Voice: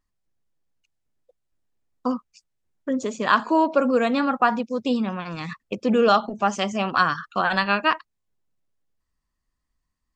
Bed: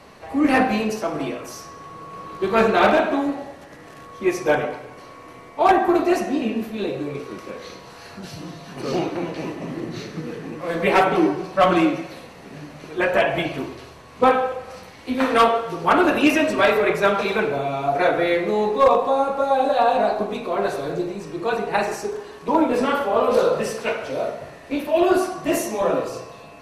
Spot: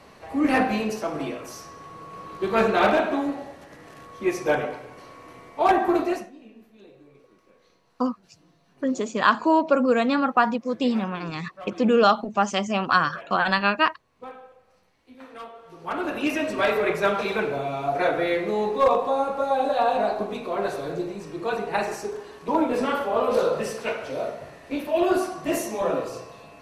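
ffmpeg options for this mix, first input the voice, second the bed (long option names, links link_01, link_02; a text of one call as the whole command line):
ffmpeg -i stem1.wav -i stem2.wav -filter_complex "[0:a]adelay=5950,volume=0dB[link_01];[1:a]volume=17dB,afade=type=out:start_time=6:duration=0.31:silence=0.0891251,afade=type=in:start_time=15.55:duration=1.3:silence=0.0944061[link_02];[link_01][link_02]amix=inputs=2:normalize=0" out.wav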